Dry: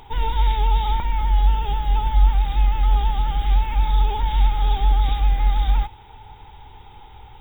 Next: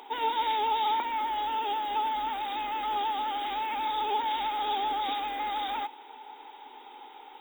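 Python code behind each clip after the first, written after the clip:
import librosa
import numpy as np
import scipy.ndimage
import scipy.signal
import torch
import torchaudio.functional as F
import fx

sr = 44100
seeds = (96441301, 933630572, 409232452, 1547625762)

y = scipy.signal.sosfilt(scipy.signal.ellip(4, 1.0, 40, 260.0, 'highpass', fs=sr, output='sos'), x)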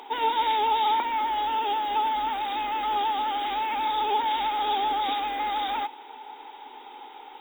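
y = fx.high_shelf(x, sr, hz=8600.0, db=-4.5)
y = y * 10.0 ** (4.0 / 20.0)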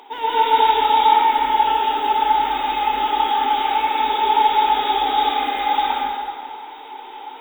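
y = fx.rev_plate(x, sr, seeds[0], rt60_s=2.0, hf_ratio=0.75, predelay_ms=115, drr_db=-8.0)
y = y * 10.0 ** (-1.0 / 20.0)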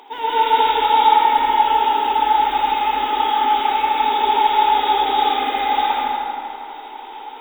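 y = fx.echo_filtered(x, sr, ms=81, feedback_pct=84, hz=3800.0, wet_db=-9)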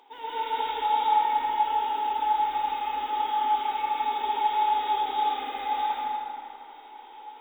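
y = fx.comb_fb(x, sr, f0_hz=170.0, decay_s=0.24, harmonics='odd', damping=0.0, mix_pct=70)
y = y * 10.0 ** (-4.5 / 20.0)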